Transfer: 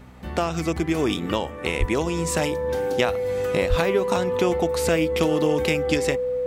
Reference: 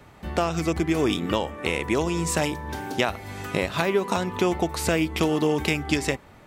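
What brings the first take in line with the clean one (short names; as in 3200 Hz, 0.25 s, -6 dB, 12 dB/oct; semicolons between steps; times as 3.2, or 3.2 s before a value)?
de-hum 63.1 Hz, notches 4; notch 500 Hz, Q 30; 1.79–1.91 HPF 140 Hz 24 dB/oct; 3.69–3.81 HPF 140 Hz 24 dB/oct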